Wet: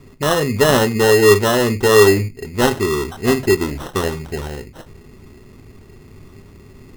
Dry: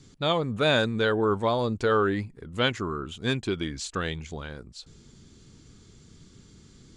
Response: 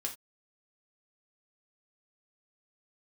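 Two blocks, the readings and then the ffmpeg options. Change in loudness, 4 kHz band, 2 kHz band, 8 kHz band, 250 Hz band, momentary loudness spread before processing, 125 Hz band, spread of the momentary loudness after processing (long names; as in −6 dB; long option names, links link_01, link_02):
+11.0 dB, +7.0 dB, +9.5 dB, +19.0 dB, +10.0 dB, 15 LU, +10.0 dB, 15 LU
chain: -filter_complex "[0:a]equalizer=frequency=400:width=4.3:gain=10,asplit=2[link_01][link_02];[1:a]atrim=start_sample=2205,lowshelf=frequency=230:gain=9[link_03];[link_02][link_03]afir=irnorm=-1:irlink=0,volume=-0.5dB[link_04];[link_01][link_04]amix=inputs=2:normalize=0,acrusher=samples=19:mix=1:aa=0.000001,volume=1dB"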